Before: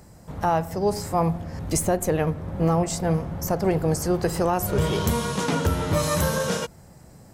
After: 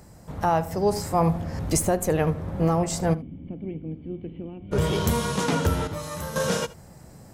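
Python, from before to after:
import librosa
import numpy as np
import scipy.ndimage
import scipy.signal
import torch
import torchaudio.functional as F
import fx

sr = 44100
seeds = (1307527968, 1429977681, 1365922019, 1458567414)

p1 = fx.rider(x, sr, range_db=10, speed_s=0.5)
p2 = fx.formant_cascade(p1, sr, vowel='i', at=(3.13, 4.71), fade=0.02)
p3 = fx.comb_fb(p2, sr, f0_hz=110.0, decay_s=1.6, harmonics='all', damping=0.0, mix_pct=70, at=(5.87, 6.36))
y = p3 + fx.echo_single(p3, sr, ms=76, db=-19.5, dry=0)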